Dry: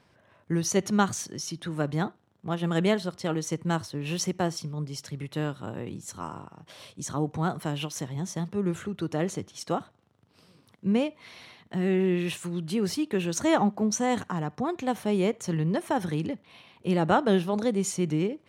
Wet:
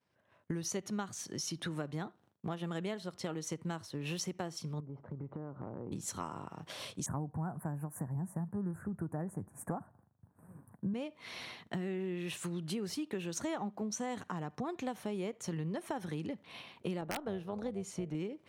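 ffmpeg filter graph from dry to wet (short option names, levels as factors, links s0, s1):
-filter_complex "[0:a]asettb=1/sr,asplit=3[s0][s1][s2];[s0]atrim=end=4.804[s3];[s1]atrim=start=4.8:end=5.92,asetpts=PTS-STARTPTS,afade=t=in:d=0.004:c=qsin,afade=t=out:st=1.116:d=0.004:c=qsin,lowpass=f=1100:w=0.5412,lowpass=f=1100:w=1.3066,acompressor=threshold=0.0112:ratio=12:attack=3.2:release=140:knee=1:detection=peak[s4];[s2]atrim=start=5.916[s5];[s3][s4]acrossfade=d=0.004:c1=hsin:c2=qsin[s6];[s6][s5]acrossfade=d=0.004:c1=qsin:c2=hsin,asettb=1/sr,asplit=3[s7][s8][s9];[s7]atrim=end=7.064[s10];[s8]atrim=start=7.06:end=10.94,asetpts=PTS-STARTPTS,afade=t=in:d=0.004:c=qsin,afade=t=out:st=3.876:d=0.004:c=qsin,asuperstop=centerf=4000:order=8:qfactor=0.54,bass=f=250:g=6,treble=f=4000:g=2,aecho=1:1:1.2:0.38,atrim=end_sample=171108[s11];[s9]atrim=start=10.936[s12];[s10][s11]acrossfade=d=0.004:c1=hsin:c2=qsin[s13];[s13][s12]acrossfade=d=0.004:c1=qsin:c2=hsin,asettb=1/sr,asplit=3[s14][s15][s16];[s14]atrim=end=17.014[s17];[s15]atrim=start=17.01:end=18.15,asetpts=PTS-STARTPTS,afade=t=in:d=0.004:c=qsin,afade=t=out:st=1.136:d=0.004:c=qsin,highshelf=f=2500:g=-9,tremolo=f=300:d=0.462,aeval=exprs='(mod(4.22*val(0)+1,2)-1)/4.22':c=same[s18];[s16]atrim=start=18.146[s19];[s17][s18]acrossfade=d=0.004:c1=hsin:c2=qsin[s20];[s20][s19]acrossfade=d=0.004:c1=qsin:c2=hsin,agate=range=0.0224:threshold=0.00282:ratio=3:detection=peak,lowshelf=f=94:g=-5.5,acompressor=threshold=0.0112:ratio=6,volume=1.41"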